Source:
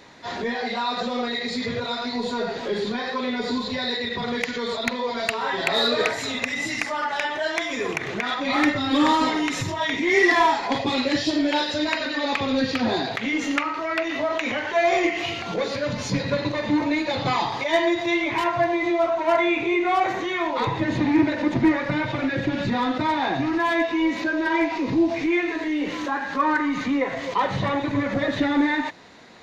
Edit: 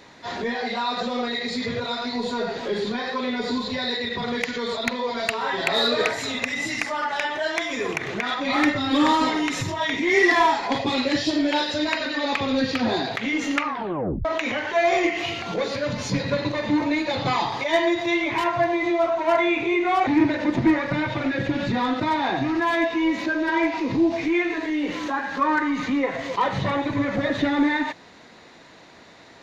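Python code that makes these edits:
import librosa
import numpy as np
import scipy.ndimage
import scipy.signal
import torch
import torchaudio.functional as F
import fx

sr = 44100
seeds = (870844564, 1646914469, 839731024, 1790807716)

y = fx.edit(x, sr, fx.tape_stop(start_s=13.64, length_s=0.61),
    fx.cut(start_s=20.07, length_s=0.98), tone=tone)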